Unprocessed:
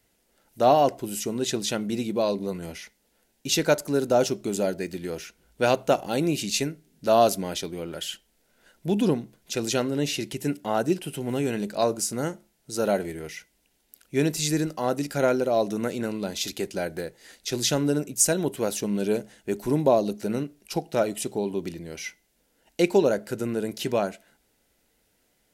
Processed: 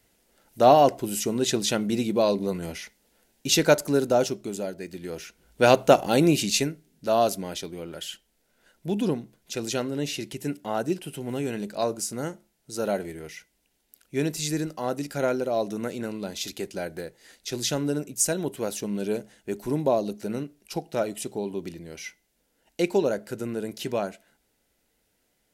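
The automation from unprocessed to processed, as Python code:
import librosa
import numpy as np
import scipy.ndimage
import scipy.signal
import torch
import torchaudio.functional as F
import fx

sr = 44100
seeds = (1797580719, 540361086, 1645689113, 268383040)

y = fx.gain(x, sr, db=fx.line((3.88, 2.5), (4.72, -7.0), (5.76, 5.0), (6.29, 5.0), (7.06, -3.0)))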